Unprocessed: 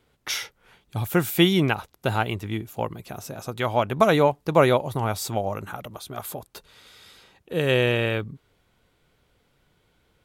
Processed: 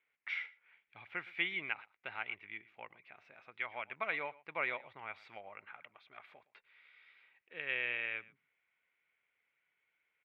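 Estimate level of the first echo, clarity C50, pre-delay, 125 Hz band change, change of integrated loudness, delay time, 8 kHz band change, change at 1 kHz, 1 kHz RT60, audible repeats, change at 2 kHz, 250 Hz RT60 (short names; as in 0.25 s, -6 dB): -21.0 dB, none, none, -37.0 dB, -15.5 dB, 0.115 s, under -40 dB, -19.5 dB, none, 1, -8.0 dB, none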